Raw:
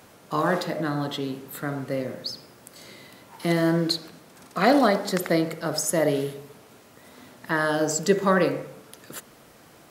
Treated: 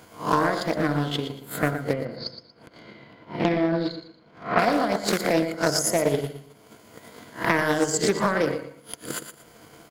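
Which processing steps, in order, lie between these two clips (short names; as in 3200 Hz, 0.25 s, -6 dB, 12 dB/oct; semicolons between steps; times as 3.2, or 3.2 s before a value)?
spectral swells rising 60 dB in 0.42 s; ripple EQ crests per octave 1.8, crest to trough 7 dB; limiter -14 dBFS, peak gain reduction 10 dB; transient shaper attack +12 dB, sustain -11 dB; 1.93–4.59 air absorption 310 m; feedback echo 0.117 s, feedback 26%, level -10 dB; Doppler distortion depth 0.38 ms; gain -1 dB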